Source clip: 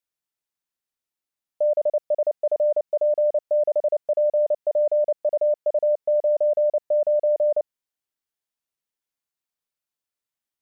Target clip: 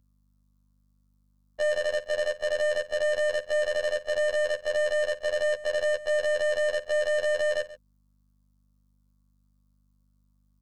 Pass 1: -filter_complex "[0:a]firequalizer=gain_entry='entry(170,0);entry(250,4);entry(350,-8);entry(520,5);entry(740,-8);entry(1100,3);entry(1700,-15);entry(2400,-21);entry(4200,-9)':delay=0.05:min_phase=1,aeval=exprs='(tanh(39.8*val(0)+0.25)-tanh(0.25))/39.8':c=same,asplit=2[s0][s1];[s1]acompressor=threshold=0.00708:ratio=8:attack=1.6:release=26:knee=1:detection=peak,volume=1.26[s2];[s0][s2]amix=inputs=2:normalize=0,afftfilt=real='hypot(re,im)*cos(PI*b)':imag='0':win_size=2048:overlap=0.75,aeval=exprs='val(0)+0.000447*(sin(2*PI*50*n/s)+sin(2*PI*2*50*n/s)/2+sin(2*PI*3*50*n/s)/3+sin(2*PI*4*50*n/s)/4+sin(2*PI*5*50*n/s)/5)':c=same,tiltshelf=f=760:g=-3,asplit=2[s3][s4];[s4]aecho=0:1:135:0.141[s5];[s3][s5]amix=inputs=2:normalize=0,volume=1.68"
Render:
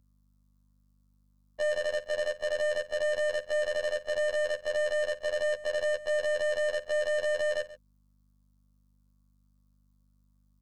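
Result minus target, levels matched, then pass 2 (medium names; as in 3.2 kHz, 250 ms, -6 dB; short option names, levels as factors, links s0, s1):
compression: peak gain reduction +8.5 dB
-filter_complex "[0:a]firequalizer=gain_entry='entry(170,0);entry(250,4);entry(350,-8);entry(520,5);entry(740,-8);entry(1100,3);entry(1700,-15);entry(2400,-21);entry(4200,-9)':delay=0.05:min_phase=1,aeval=exprs='(tanh(39.8*val(0)+0.25)-tanh(0.25))/39.8':c=same,asplit=2[s0][s1];[s1]acompressor=threshold=0.0211:ratio=8:attack=1.6:release=26:knee=1:detection=peak,volume=1.26[s2];[s0][s2]amix=inputs=2:normalize=0,afftfilt=real='hypot(re,im)*cos(PI*b)':imag='0':win_size=2048:overlap=0.75,aeval=exprs='val(0)+0.000447*(sin(2*PI*50*n/s)+sin(2*PI*2*50*n/s)/2+sin(2*PI*3*50*n/s)/3+sin(2*PI*4*50*n/s)/4+sin(2*PI*5*50*n/s)/5)':c=same,tiltshelf=f=760:g=-3,asplit=2[s3][s4];[s4]aecho=0:1:135:0.141[s5];[s3][s5]amix=inputs=2:normalize=0,volume=1.68"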